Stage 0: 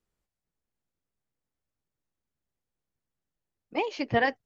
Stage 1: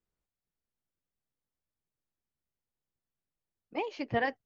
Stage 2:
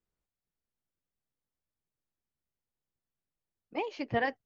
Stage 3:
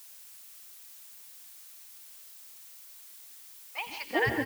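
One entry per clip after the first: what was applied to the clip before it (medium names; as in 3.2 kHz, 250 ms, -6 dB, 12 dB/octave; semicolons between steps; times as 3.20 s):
treble shelf 4.5 kHz -6.5 dB; trim -5 dB
no audible change
three bands offset in time highs, lows, mids 140/380 ms, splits 170/960 Hz; gated-style reverb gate 200 ms rising, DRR 6 dB; added noise blue -56 dBFS; trim +5.5 dB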